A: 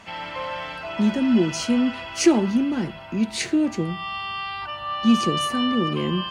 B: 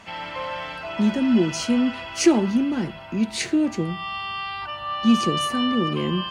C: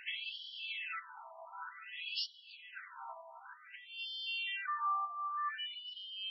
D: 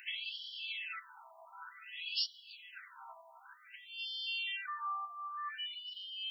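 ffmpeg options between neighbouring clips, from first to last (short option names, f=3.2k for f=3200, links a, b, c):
-af anull
-af "acompressor=threshold=-31dB:ratio=5,afftfilt=real='re*between(b*sr/1024,890*pow(4100/890,0.5+0.5*sin(2*PI*0.54*pts/sr))/1.41,890*pow(4100/890,0.5+0.5*sin(2*PI*0.54*pts/sr))*1.41)':imag='im*between(b*sr/1024,890*pow(4100/890,0.5+0.5*sin(2*PI*0.54*pts/sr))/1.41,890*pow(4100/890,0.5+0.5*sin(2*PI*0.54*pts/sr))*1.41)':win_size=1024:overlap=0.75"
-af "crystalizer=i=4.5:c=0,volume=-6.5dB"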